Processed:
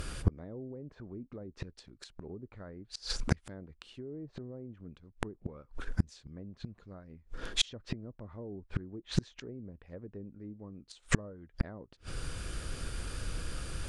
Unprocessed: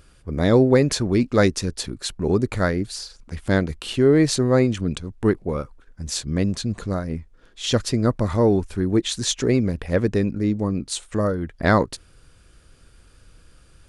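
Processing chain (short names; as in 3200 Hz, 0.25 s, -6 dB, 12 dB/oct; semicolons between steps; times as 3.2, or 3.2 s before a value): limiter -11 dBFS, peak gain reduction 6 dB; treble ducked by the level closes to 570 Hz, closed at -15.5 dBFS; flipped gate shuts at -25 dBFS, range -37 dB; gain +13 dB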